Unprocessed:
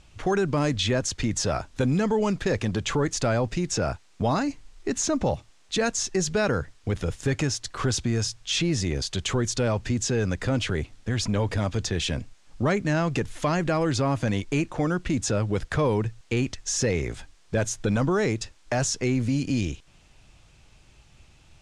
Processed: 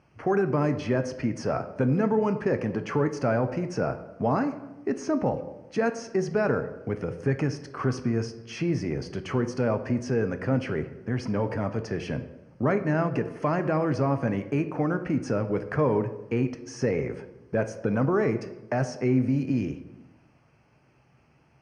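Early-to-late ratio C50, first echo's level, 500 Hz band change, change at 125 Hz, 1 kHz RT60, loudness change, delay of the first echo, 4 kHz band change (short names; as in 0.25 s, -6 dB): 12.0 dB, none, +0.5 dB, -2.5 dB, 0.95 s, -1.5 dB, none, -15.0 dB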